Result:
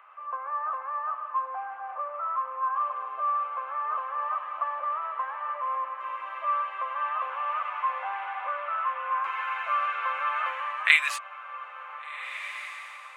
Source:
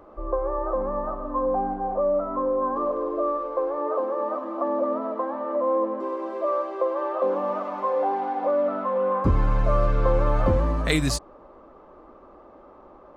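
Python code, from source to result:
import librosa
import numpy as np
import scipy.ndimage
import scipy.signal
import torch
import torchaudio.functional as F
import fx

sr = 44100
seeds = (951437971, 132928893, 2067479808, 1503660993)

y = scipy.signal.sosfilt(scipy.signal.butter(4, 1200.0, 'highpass', fs=sr, output='sos'), x)
y = fx.high_shelf_res(y, sr, hz=3600.0, db=-10.0, q=3.0)
y = fx.echo_diffused(y, sr, ms=1532, feedback_pct=46, wet_db=-12.5)
y = F.gain(torch.from_numpy(y), 5.0).numpy()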